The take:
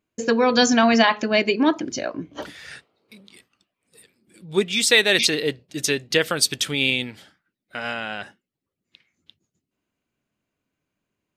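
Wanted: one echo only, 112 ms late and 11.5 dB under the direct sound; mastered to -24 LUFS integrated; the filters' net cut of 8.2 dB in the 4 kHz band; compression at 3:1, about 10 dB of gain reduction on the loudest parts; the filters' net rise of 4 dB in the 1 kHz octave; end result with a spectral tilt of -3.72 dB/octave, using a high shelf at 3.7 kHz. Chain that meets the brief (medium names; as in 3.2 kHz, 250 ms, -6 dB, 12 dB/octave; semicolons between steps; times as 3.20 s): peaking EQ 1 kHz +6 dB; treble shelf 3.7 kHz -6 dB; peaking EQ 4 kHz -7 dB; compression 3:1, threshold -24 dBFS; delay 112 ms -11.5 dB; trim +3.5 dB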